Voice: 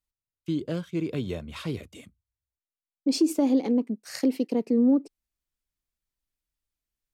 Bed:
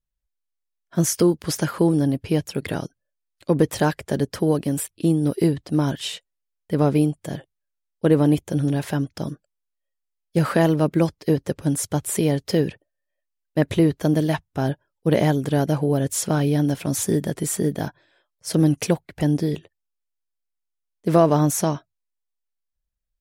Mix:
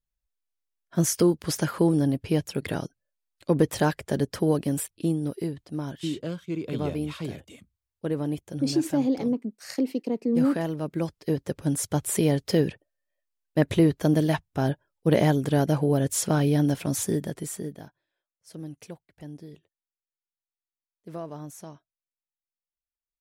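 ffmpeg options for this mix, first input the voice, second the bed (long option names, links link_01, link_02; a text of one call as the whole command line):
ffmpeg -i stem1.wav -i stem2.wav -filter_complex "[0:a]adelay=5550,volume=-2dB[link_01];[1:a]volume=6.5dB,afade=type=out:start_time=4.74:duration=0.71:silence=0.375837,afade=type=in:start_time=10.82:duration=1.23:silence=0.334965,afade=type=out:start_time=16.72:duration=1.19:silence=0.112202[link_02];[link_01][link_02]amix=inputs=2:normalize=0" out.wav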